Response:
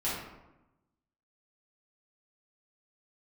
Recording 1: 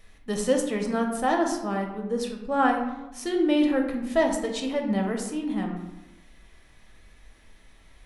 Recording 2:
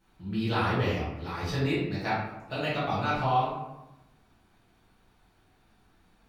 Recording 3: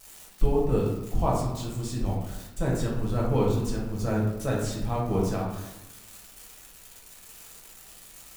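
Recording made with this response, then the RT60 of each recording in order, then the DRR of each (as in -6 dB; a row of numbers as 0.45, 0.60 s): 2; 1.0, 0.95, 0.95 s; 1.5, -10.5, -4.0 dB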